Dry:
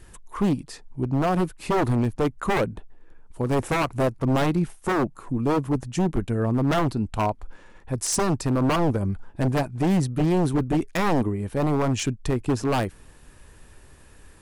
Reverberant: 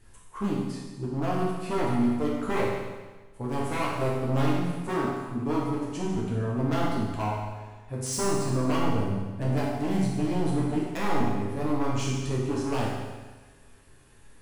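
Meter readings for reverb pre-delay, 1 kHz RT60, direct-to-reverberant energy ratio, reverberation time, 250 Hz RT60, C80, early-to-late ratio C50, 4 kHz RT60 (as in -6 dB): 7 ms, 1.3 s, -6.0 dB, 1.3 s, 1.3 s, 2.5 dB, 0.0 dB, 1.3 s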